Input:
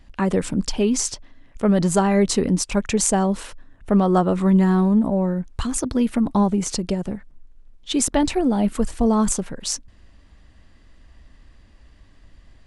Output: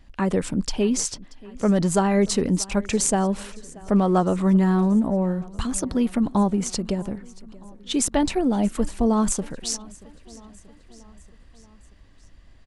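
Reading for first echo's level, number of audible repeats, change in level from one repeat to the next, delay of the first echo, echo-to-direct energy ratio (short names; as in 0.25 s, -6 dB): -22.0 dB, 3, -4.5 dB, 0.632 s, -20.0 dB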